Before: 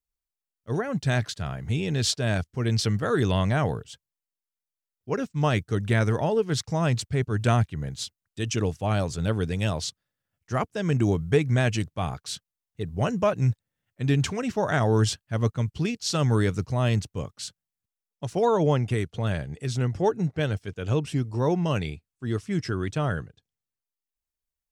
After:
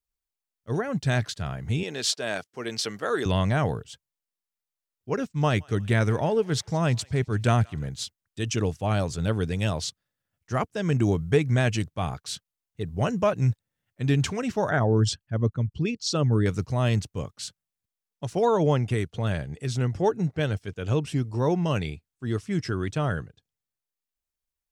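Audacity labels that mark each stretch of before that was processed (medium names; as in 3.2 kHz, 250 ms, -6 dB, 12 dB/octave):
1.830000	3.260000	high-pass 370 Hz
5.370000	7.870000	thinning echo 169 ms, feedback 63%, high-pass 1.1 kHz, level -24 dB
14.690000	16.460000	resonances exaggerated exponent 1.5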